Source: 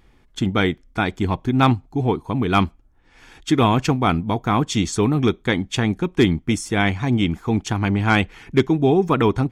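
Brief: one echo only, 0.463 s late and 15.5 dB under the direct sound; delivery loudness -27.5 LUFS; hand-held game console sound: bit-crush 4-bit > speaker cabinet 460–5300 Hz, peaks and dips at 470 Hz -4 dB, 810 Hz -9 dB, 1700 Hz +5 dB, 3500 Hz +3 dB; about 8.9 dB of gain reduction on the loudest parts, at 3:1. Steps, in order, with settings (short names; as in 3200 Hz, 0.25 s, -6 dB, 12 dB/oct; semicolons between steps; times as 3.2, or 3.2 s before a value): compressor 3:1, threshold -23 dBFS; echo 0.463 s -15.5 dB; bit-crush 4-bit; speaker cabinet 460–5300 Hz, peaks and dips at 470 Hz -4 dB, 810 Hz -9 dB, 1700 Hz +5 dB, 3500 Hz +3 dB; gain +1 dB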